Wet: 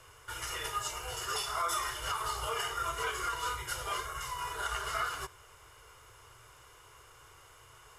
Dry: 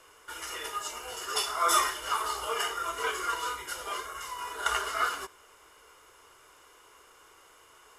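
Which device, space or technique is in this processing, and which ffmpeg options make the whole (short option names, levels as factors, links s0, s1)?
car stereo with a boomy subwoofer: -af "lowshelf=f=160:t=q:w=3:g=10,alimiter=limit=0.0668:level=0:latency=1:release=226"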